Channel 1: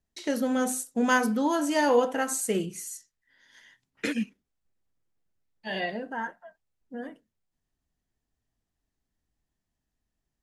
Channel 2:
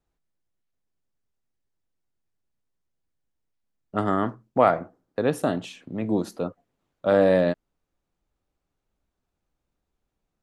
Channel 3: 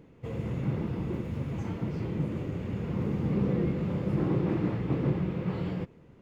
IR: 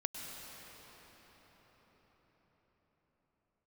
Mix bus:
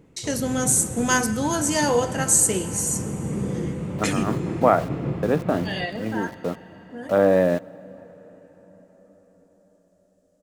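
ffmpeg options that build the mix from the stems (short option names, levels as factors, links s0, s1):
-filter_complex "[0:a]equalizer=f=7700:t=o:w=1.4:g=14.5,volume=0.841,asplit=3[s0][s1][s2];[s1]volume=0.335[s3];[1:a]lowpass=2400,aeval=exprs='val(0)*gte(abs(val(0)),0.015)':c=same,adelay=50,volume=1.06,asplit=2[s4][s5];[s5]volume=0.1[s6];[2:a]volume=0.841,asplit=2[s7][s8];[s8]volume=0.266[s9];[s2]apad=whole_len=462027[s10];[s4][s10]sidechaincompress=threshold=0.0158:ratio=8:attack=11:release=105[s11];[3:a]atrim=start_sample=2205[s12];[s3][s6][s9]amix=inputs=3:normalize=0[s13];[s13][s12]afir=irnorm=-1:irlink=0[s14];[s0][s11][s7][s14]amix=inputs=4:normalize=0"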